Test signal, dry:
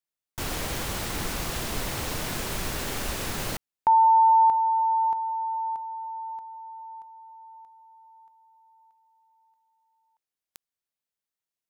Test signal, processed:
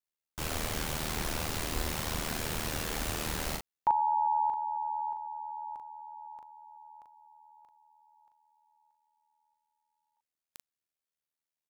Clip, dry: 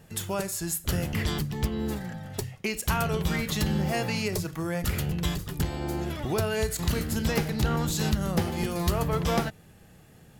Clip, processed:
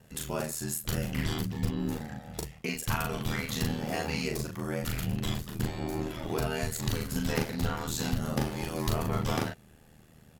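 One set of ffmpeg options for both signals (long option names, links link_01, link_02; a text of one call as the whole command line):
ffmpeg -i in.wav -filter_complex "[0:a]aeval=exprs='val(0)*sin(2*PI*39*n/s)':channel_layout=same,asplit=2[link_01][link_02];[link_02]adelay=39,volume=-3.5dB[link_03];[link_01][link_03]amix=inputs=2:normalize=0,volume=-2dB" out.wav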